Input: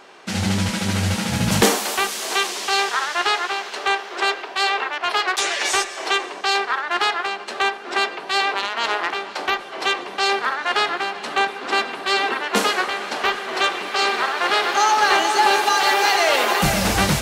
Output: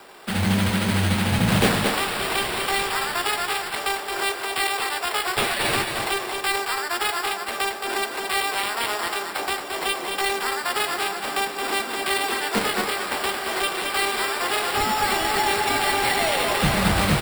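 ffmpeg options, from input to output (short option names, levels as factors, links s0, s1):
-filter_complex "[0:a]acrossover=split=180|980|3300[s0][s1][s2][s3];[s2]alimiter=limit=0.133:level=0:latency=1[s4];[s0][s1][s4][s3]amix=inputs=4:normalize=0,acrossover=split=240|3000[s5][s6][s7];[s6]acompressor=threshold=0.0447:ratio=2[s8];[s5][s8][s7]amix=inputs=3:normalize=0,acrusher=samples=7:mix=1:aa=0.000001,aecho=1:1:222:0.531"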